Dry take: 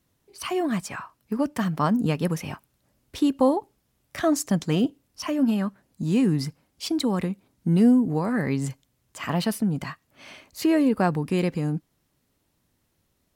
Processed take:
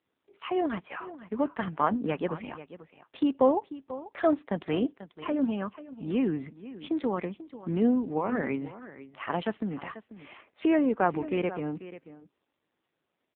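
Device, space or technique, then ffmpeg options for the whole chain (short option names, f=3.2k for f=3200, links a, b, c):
satellite phone: -af "highpass=320,lowpass=3k,aecho=1:1:490:0.178" -ar 8000 -c:a libopencore_amrnb -b:a 5900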